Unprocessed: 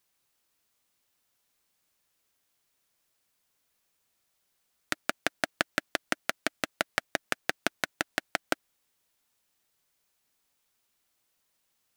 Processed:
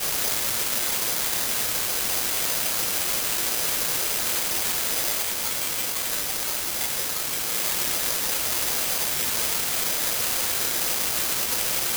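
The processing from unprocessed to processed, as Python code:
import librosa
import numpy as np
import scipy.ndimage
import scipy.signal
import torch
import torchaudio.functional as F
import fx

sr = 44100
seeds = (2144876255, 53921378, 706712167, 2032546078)

y = x + 0.5 * 10.0 ** (-16.0 / 20.0) * np.diff(np.sign(x), prepend=np.sign(x[:1]))
y = fx.lowpass(y, sr, hz=7200.0, slope=12, at=(5.2, 7.46))
y = fx.spec_topn(y, sr, count=16)
y = np.abs(y)
y = fx.quant_dither(y, sr, seeds[0], bits=6, dither='triangular')
y = fx.ladder_highpass(y, sr, hz=290.0, resonance_pct=25)
y = fx.room_shoebox(y, sr, seeds[1], volume_m3=43.0, walls='mixed', distance_m=2.4)
y = (np.kron(y[::8], np.eye(8)[0]) * 8)[:len(y)]
y = y * 10.0 ** (-6.0 / 20.0)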